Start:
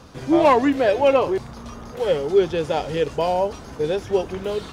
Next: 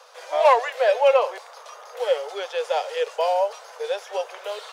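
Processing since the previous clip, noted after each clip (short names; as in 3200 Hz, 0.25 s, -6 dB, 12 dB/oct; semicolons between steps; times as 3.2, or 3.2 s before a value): steep high-pass 480 Hz 72 dB/oct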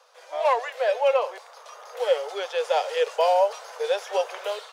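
AGC gain up to 12.5 dB; gain -8.5 dB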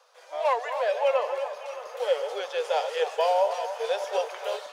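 regenerating reverse delay 0.311 s, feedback 54%, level -10 dB; delay with a stepping band-pass 0.28 s, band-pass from 840 Hz, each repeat 1.4 oct, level -9 dB; gain -3 dB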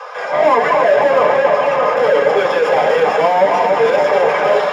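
overdrive pedal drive 35 dB, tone 1300 Hz, clips at -12.5 dBFS; reverb RT60 0.30 s, pre-delay 3 ms, DRR -1 dB; gain -3.5 dB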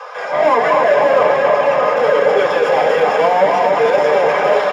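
echo 0.244 s -7 dB; gain -1 dB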